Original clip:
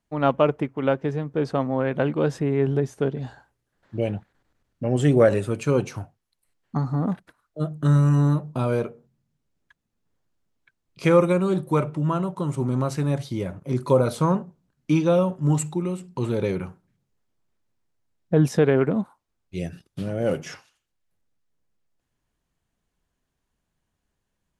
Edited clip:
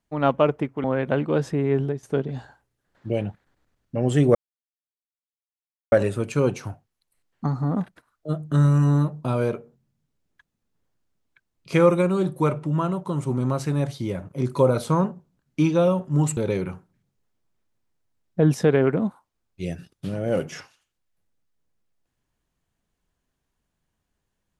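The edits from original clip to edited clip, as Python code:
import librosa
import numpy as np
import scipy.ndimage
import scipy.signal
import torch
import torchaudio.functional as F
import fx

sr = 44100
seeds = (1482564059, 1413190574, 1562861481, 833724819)

y = fx.edit(x, sr, fx.cut(start_s=0.84, length_s=0.88),
    fx.fade_out_to(start_s=2.66, length_s=0.25, floor_db=-12.0),
    fx.insert_silence(at_s=5.23, length_s=1.57),
    fx.cut(start_s=15.68, length_s=0.63), tone=tone)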